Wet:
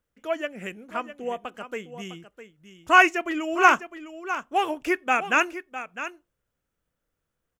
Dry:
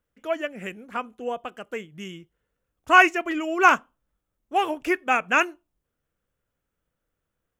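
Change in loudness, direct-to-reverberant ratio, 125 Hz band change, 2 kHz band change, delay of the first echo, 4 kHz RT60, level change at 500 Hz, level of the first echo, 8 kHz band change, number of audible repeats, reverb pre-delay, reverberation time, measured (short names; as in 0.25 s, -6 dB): -1.0 dB, none, n/a, -0.5 dB, 0.656 s, none, -0.5 dB, -12.0 dB, +1.0 dB, 1, none, none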